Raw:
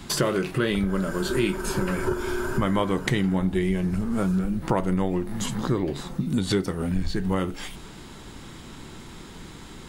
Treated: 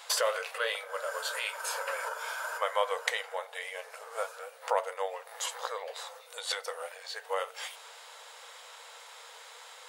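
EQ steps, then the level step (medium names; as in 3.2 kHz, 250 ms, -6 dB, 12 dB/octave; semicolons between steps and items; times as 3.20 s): brick-wall FIR high-pass 450 Hz; -2.0 dB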